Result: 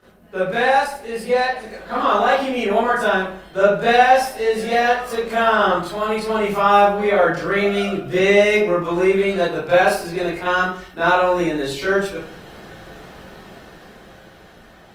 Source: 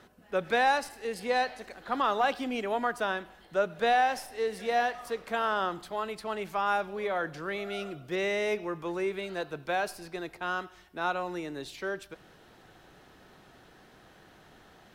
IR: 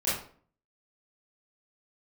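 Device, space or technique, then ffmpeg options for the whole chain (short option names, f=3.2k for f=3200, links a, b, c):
speakerphone in a meeting room: -filter_complex "[1:a]atrim=start_sample=2205[a];[0:a][a]afir=irnorm=-1:irlink=0,dynaudnorm=f=420:g=9:m=9.5dB" -ar 48000 -c:a libopus -b:a 32k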